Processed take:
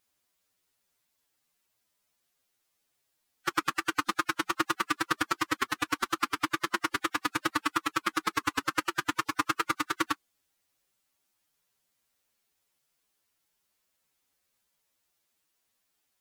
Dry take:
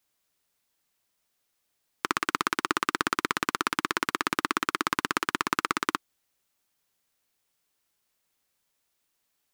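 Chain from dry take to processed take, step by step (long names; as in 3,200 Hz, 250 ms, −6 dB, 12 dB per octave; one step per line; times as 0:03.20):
phase-vocoder stretch with locked phases 1.7×
tape wow and flutter 22 cents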